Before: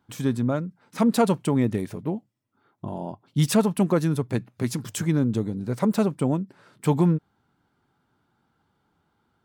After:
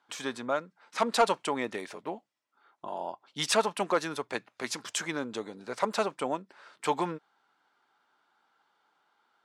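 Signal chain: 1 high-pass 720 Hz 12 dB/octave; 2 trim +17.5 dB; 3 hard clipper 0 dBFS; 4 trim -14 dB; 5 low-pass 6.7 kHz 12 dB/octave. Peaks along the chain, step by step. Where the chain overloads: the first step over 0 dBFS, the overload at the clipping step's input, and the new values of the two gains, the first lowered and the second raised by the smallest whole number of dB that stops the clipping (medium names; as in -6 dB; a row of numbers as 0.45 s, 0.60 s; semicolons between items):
-13.5 dBFS, +4.0 dBFS, 0.0 dBFS, -14.0 dBFS, -13.5 dBFS; step 2, 4.0 dB; step 2 +13.5 dB, step 4 -10 dB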